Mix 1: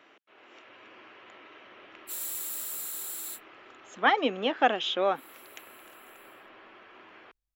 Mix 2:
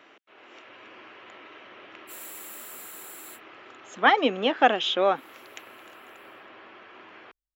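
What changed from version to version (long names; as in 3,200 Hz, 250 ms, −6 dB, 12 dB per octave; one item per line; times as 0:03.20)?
speech +4.0 dB
background −7.0 dB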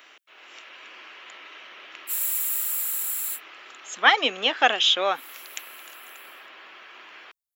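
master: add spectral tilt +4.5 dB per octave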